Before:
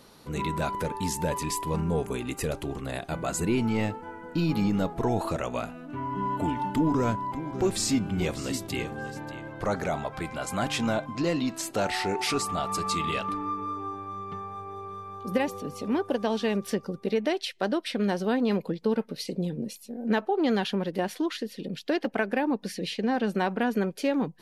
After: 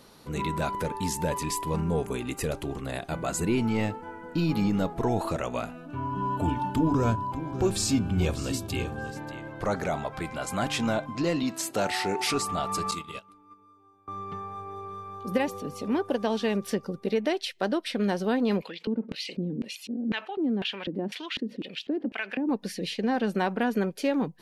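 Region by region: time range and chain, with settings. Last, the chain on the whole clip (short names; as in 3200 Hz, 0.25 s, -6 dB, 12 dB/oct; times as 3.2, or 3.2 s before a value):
5.76–9.12 Butterworth band-stop 2000 Hz, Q 7.2 + bell 79 Hz +10 dB 1.1 oct + notches 50/100/150/200/250/300/350/400 Hz
11.43–12.31 HPF 95 Hz + high shelf 8200 Hz +4 dB
12.91–14.08 high shelf 6400 Hz +11 dB + notch 1800 Hz, Q 8.9 + gate -27 dBFS, range -25 dB
18.62–22.49 LFO band-pass square 2 Hz 260–2700 Hz + fast leveller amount 50%
whole clip: dry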